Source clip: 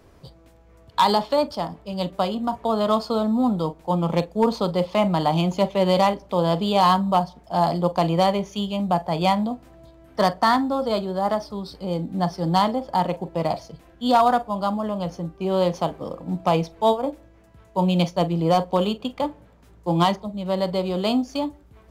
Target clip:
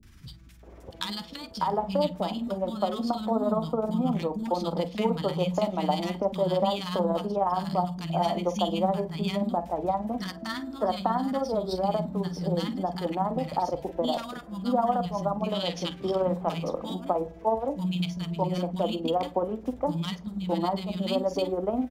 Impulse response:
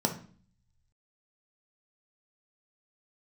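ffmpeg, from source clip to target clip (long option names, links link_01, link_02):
-filter_complex "[0:a]asettb=1/sr,asplit=3[link_01][link_02][link_03];[link_01]atrim=end=15.494[link_04];[link_02]atrim=start=15.49:end=16.19,asetpts=PTS-STARTPTS,afade=type=in:duration=0.004:curve=qsin,afade=type=out:start_time=0.696:duration=0.004:curve=qsin,equalizer=frequency=3200:width_type=o:width=2.5:gain=13[link_05];[link_03]atrim=start=16.186[link_06];[link_04][link_05]acrossfade=duration=0.004:curve1=hsin:curve2=qsin[link_07];[link_07][link_06]acrossfade=duration=0.004:curve1=qsin:curve2=hsin,acompressor=threshold=-32dB:ratio=2.5,tremolo=f=19:d=0.53,acrossover=split=220|1400[link_08][link_09][link_10];[link_10]adelay=30[link_11];[link_09]adelay=630[link_12];[link_08][link_12][link_11]amix=inputs=3:normalize=0,asplit=2[link_13][link_14];[1:a]atrim=start_sample=2205[link_15];[link_14][link_15]afir=irnorm=-1:irlink=0,volume=-21dB[link_16];[link_13][link_16]amix=inputs=2:normalize=0,volume=5.5dB"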